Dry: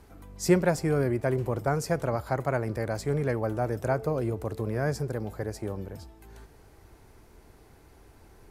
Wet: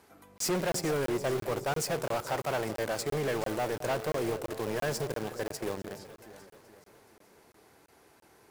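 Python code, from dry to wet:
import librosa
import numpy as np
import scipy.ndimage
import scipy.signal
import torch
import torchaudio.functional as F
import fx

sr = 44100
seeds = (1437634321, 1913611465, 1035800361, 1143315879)

p1 = scipy.signal.sosfilt(scipy.signal.butter(2, 120.0, 'highpass', fs=sr, output='sos'), x)
p2 = fx.low_shelf(p1, sr, hz=330.0, db=-10.5)
p3 = fx.quant_companded(p2, sr, bits=2)
p4 = p2 + (p3 * 10.0 ** (-7.0 / 20.0))
p5 = 10.0 ** (-26.0 / 20.0) * np.tanh(p4 / 10.0 ** (-26.0 / 20.0))
p6 = fx.echo_alternate(p5, sr, ms=213, hz=830.0, feedback_pct=70, wet_db=-11.5)
y = fx.buffer_crackle(p6, sr, first_s=0.38, period_s=0.34, block=1024, kind='zero')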